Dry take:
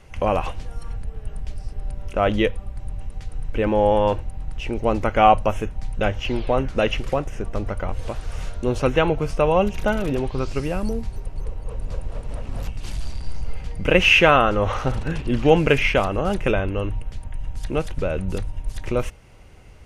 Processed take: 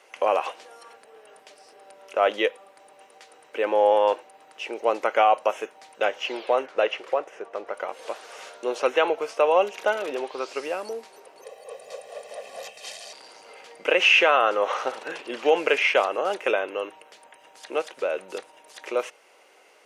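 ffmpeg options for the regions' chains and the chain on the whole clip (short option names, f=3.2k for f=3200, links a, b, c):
-filter_complex "[0:a]asettb=1/sr,asplit=3[a][b][c];[a]atrim=end=6.664[d];[b]atrim=start=6.66:end=7.74,asetpts=PTS-STARTPTS,afade=t=in:d=0.004:c=qsin,afade=t=out:st=1.076:d=0.004:c=qsin,lowpass=f=2.2k:p=1,equalizer=f=250:t=o:w=0.3:g=-9[e];[c]atrim=start=7.736[f];[d][e]acrossfade=d=0.004:c1=hsin:c2=qsin[g];[g][f]acrossfade=d=0.004:c1=qsin:c2=hsin,asettb=1/sr,asplit=3[h][i][j];[h]atrim=end=11.424[k];[i]atrim=start=11.42:end=13.13,asetpts=PTS-STARTPTS,afade=t=in:d=0.004:c=qsin,afade=t=out:st=1.706:d=0.004:c=qsin,asuperstop=centerf=1300:order=4:qfactor=4.8,highshelf=f=5.8k:g=6.5,aecho=1:1:1.6:0.85,atrim=end_sample=75411[l];[j]atrim=start=13.126[m];[k][l]acrossfade=d=0.004:c1=hsin:c2=qsin[n];[n][m]acrossfade=d=0.004:c1=qsin:c2=hsin,acrossover=split=8400[o][p];[p]acompressor=threshold=-58dB:ratio=4:attack=1:release=60[q];[o][q]amix=inputs=2:normalize=0,highpass=f=420:w=0.5412,highpass=f=420:w=1.3066,alimiter=level_in=7dB:limit=-1dB:release=50:level=0:latency=1,volume=-7dB"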